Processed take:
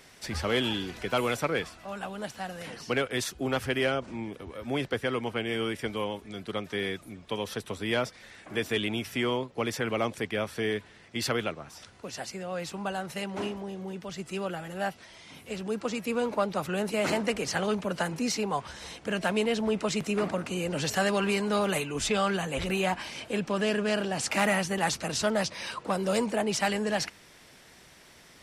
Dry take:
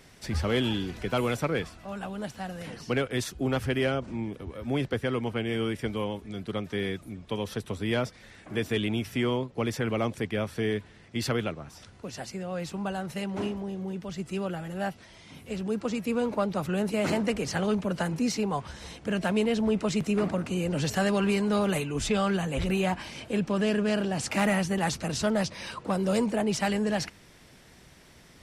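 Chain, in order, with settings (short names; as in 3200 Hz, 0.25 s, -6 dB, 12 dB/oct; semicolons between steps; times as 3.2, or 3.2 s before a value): low shelf 290 Hz -10 dB; gain +2.5 dB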